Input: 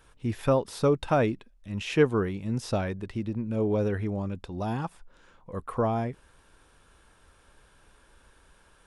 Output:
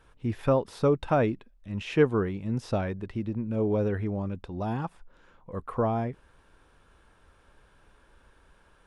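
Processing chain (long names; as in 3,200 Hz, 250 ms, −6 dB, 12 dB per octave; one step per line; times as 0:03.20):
high-shelf EQ 4,300 Hz −10.5 dB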